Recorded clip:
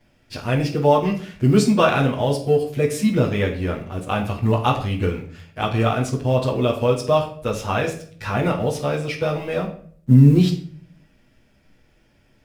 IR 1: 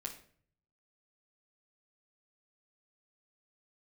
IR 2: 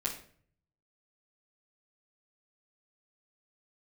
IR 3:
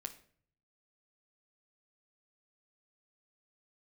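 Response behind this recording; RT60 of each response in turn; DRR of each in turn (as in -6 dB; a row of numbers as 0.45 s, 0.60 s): 2; 0.50 s, 0.50 s, 0.50 s; -2.5 dB, -8.0 dB, 4.0 dB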